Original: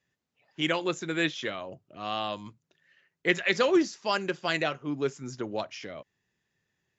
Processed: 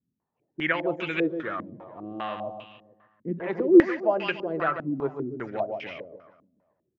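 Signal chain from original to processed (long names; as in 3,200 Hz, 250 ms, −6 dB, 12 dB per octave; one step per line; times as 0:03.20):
repeating echo 144 ms, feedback 49%, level −7.5 dB
low-pass on a step sequencer 5 Hz 240–2,600 Hz
level −2 dB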